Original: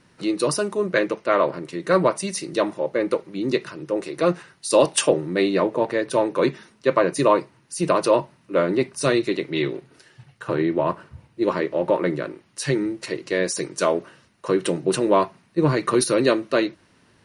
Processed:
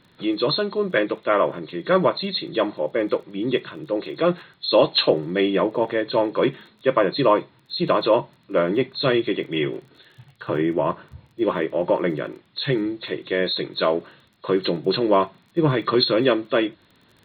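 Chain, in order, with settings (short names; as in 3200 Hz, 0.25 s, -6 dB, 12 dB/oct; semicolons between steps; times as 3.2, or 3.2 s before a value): nonlinear frequency compression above 3200 Hz 4:1; crackle 23/s -43 dBFS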